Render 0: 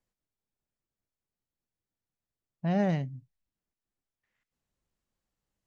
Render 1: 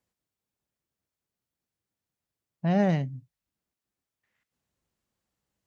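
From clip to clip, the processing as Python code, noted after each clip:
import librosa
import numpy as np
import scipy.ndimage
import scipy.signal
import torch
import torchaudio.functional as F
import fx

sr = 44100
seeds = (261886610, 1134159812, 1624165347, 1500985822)

y = scipy.signal.sosfilt(scipy.signal.butter(2, 61.0, 'highpass', fs=sr, output='sos'), x)
y = F.gain(torch.from_numpy(y), 3.5).numpy()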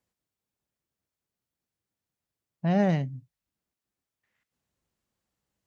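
y = x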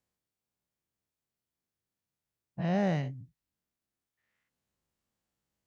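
y = fx.spec_dilate(x, sr, span_ms=120)
y = F.gain(torch.from_numpy(y), -7.5).numpy()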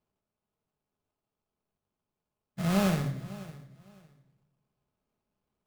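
y = fx.sample_hold(x, sr, seeds[0], rate_hz=1900.0, jitter_pct=20)
y = fx.echo_feedback(y, sr, ms=556, feedback_pct=22, wet_db=-18.0)
y = fx.room_shoebox(y, sr, seeds[1], volume_m3=2600.0, walls='furnished', distance_m=1.4)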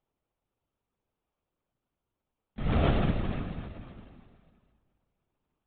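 y = fx.echo_feedback(x, sr, ms=202, feedback_pct=51, wet_db=-4)
y = fx.lpc_vocoder(y, sr, seeds[2], excitation='whisper', order=16)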